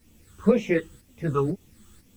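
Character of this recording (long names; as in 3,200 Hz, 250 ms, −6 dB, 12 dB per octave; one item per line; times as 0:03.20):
phaser sweep stages 8, 2 Hz, lowest notch 620–1,500 Hz
a quantiser's noise floor 12 bits, dither triangular
tremolo saw up 2 Hz, depth 60%
a shimmering, thickened sound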